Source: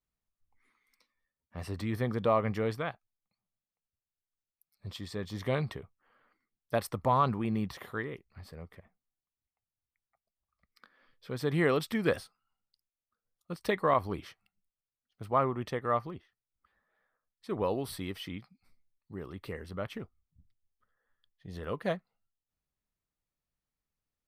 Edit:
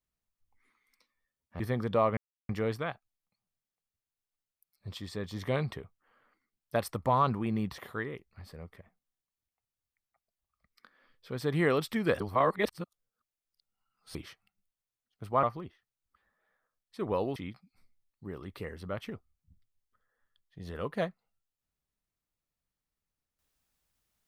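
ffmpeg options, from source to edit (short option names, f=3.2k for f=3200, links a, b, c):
-filter_complex "[0:a]asplit=7[a][b][c][d][e][f][g];[a]atrim=end=1.602[h];[b]atrim=start=1.908:end=2.48,asetpts=PTS-STARTPTS,afade=t=out:st=0.568:d=0.004:c=hsin,apad=pad_dur=0.32[i];[c]atrim=start=2.48:end=12.192,asetpts=PTS-STARTPTS,afade=t=in:d=0.004:c=hsin[j];[d]atrim=start=12.188:end=14.142,asetpts=PTS-STARTPTS,areverse[k];[e]atrim=start=14.138:end=15.422[l];[f]atrim=start=15.928:end=17.862[m];[g]atrim=start=18.238[n];[i][j]concat=n=2:v=0:a=1[o];[h][o]acrossfade=d=0.004:c1=hsin:c2=hsin[p];[p][k]acrossfade=d=0.004:c1=hsin:c2=hsin[q];[q][l]acrossfade=d=0.004:c1=hsin:c2=hsin[r];[r][m]acrossfade=d=0.004:c1=hsin:c2=hsin[s];[s][n]acrossfade=d=0.004:c1=hsin:c2=hsin"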